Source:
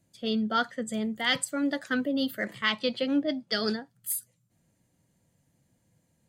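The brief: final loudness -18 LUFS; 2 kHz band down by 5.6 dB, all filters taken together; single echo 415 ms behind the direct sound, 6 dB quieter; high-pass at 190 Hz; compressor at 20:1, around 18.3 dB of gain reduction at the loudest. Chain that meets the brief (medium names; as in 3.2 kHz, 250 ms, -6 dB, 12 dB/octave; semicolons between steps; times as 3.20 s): high-pass 190 Hz; peaking EQ 2 kHz -7 dB; compression 20:1, threshold -42 dBFS; delay 415 ms -6 dB; trim +28 dB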